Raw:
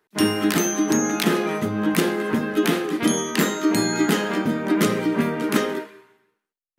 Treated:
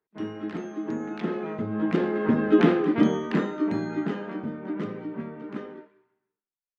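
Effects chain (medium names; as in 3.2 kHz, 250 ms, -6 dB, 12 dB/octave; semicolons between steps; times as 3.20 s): Doppler pass-by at 2.66 s, 7 m/s, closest 2.9 m; tape spacing loss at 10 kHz 40 dB; trim +4 dB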